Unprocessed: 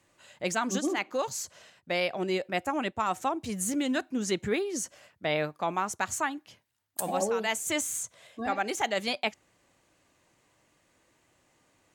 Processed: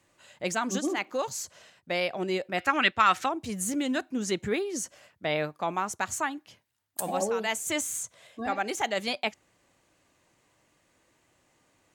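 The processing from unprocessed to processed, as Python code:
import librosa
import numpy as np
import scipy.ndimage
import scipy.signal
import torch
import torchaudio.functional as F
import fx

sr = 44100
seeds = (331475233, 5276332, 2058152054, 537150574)

y = fx.dmg_crackle(x, sr, seeds[0], per_s=120.0, level_db=-58.0, at=(0.97, 1.44), fade=0.02)
y = fx.band_shelf(y, sr, hz=2500.0, db=13.0, octaves=2.4, at=(2.58, 3.26))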